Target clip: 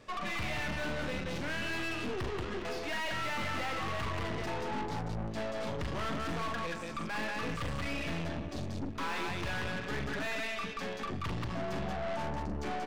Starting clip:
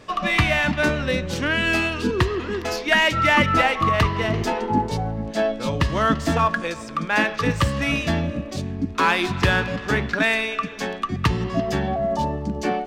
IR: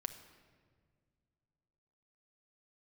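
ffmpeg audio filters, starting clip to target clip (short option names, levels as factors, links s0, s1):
-filter_complex "[0:a]aecho=1:1:42|182:0.447|0.562,aeval=exprs='(tanh(25.1*val(0)+0.75)-tanh(0.75))/25.1':c=same,acrossover=split=4500[s0][s1];[s1]acompressor=threshold=0.00501:ratio=4:attack=1:release=60[s2];[s0][s2]amix=inputs=2:normalize=0,volume=0.501"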